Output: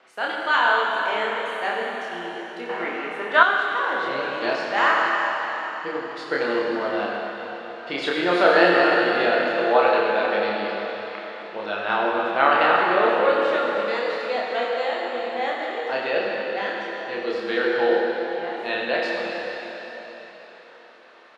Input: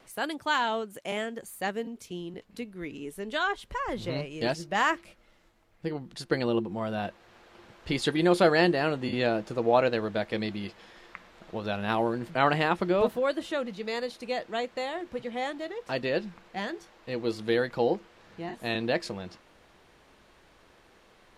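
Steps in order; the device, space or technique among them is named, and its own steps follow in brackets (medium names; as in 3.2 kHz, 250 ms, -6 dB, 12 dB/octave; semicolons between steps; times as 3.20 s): station announcement (band-pass 440–3700 Hz; peaking EQ 1.4 kHz +4 dB 0.43 oct; loudspeakers at several distances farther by 10 m -2 dB, 31 m -12 dB; reverberation RT60 4.2 s, pre-delay 37 ms, DRR -1.5 dB); 2.69–3.43 s: peaking EQ 1.1 kHz +14 dB 1.8 oct; trim +2.5 dB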